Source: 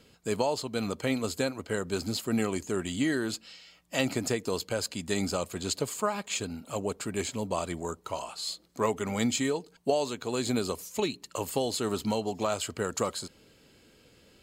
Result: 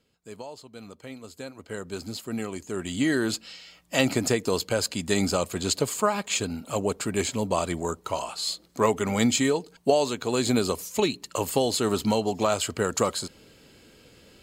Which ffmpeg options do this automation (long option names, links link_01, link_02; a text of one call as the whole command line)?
ffmpeg -i in.wav -af "volume=5.5dB,afade=type=in:start_time=1.33:duration=0.47:silence=0.375837,afade=type=in:start_time=2.64:duration=0.59:silence=0.354813" out.wav